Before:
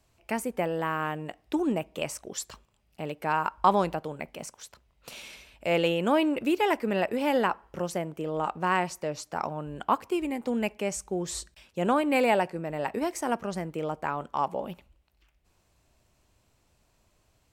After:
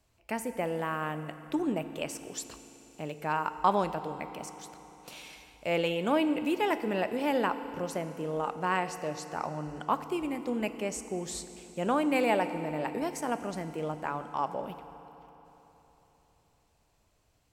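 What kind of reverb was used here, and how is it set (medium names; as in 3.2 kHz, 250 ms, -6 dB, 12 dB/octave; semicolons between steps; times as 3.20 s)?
FDN reverb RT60 3.8 s, high-frequency decay 0.85×, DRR 10 dB; trim -3.5 dB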